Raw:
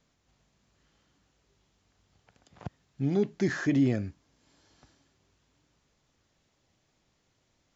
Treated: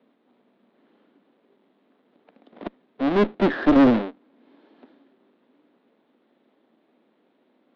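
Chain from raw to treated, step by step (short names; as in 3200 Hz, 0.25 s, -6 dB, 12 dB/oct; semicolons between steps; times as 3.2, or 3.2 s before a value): half-waves squared off; Chebyshev band-pass 230–3800 Hz, order 4; tilt shelf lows +6.5 dB, about 870 Hz; added harmonics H 4 -13 dB, 5 -23 dB, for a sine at -9 dBFS; gain +2 dB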